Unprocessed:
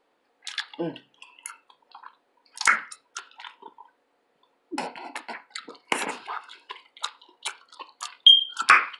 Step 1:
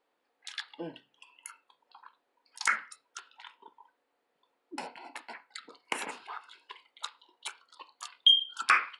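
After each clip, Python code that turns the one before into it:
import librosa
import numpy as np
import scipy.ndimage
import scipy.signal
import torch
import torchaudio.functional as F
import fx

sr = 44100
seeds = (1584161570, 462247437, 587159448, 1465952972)

y = fx.low_shelf(x, sr, hz=460.0, db=-4.0)
y = F.gain(torch.from_numpy(y), -7.5).numpy()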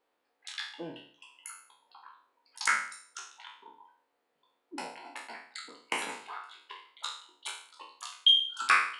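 y = fx.spec_trails(x, sr, decay_s=0.52)
y = F.gain(torch.from_numpy(y), -2.0).numpy()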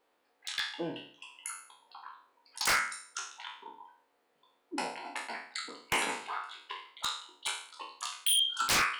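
y = 10.0 ** (-25.5 / 20.0) * (np.abs((x / 10.0 ** (-25.5 / 20.0) + 3.0) % 4.0 - 2.0) - 1.0)
y = F.gain(torch.from_numpy(y), 4.5).numpy()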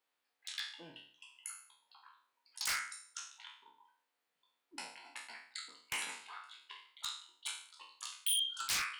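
y = fx.tone_stack(x, sr, knobs='5-5-5')
y = F.gain(torch.from_numpy(y), 1.0).numpy()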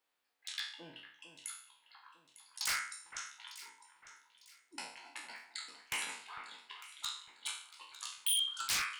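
y = fx.echo_alternate(x, sr, ms=451, hz=2100.0, feedback_pct=57, wet_db=-10.5)
y = F.gain(torch.from_numpy(y), 1.0).numpy()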